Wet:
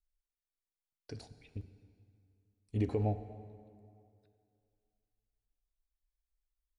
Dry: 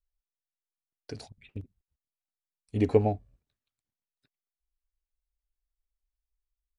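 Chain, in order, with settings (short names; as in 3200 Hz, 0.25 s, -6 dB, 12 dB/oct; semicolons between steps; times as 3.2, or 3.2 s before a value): low shelf 110 Hz +7 dB; limiter -15.5 dBFS, peak gain reduction 9 dB; plate-style reverb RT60 2.4 s, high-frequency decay 0.75×, DRR 11 dB; gain -7 dB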